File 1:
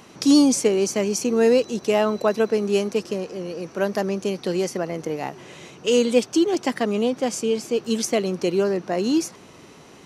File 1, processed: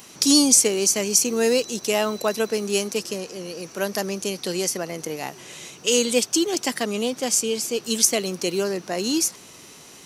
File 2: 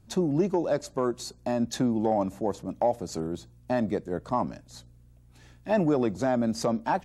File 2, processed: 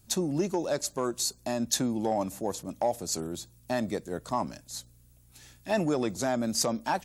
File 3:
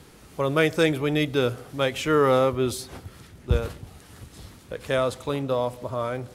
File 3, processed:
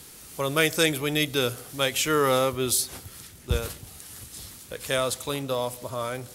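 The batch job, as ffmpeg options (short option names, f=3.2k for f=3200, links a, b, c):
-af "crystalizer=i=5:c=0,volume=-4dB"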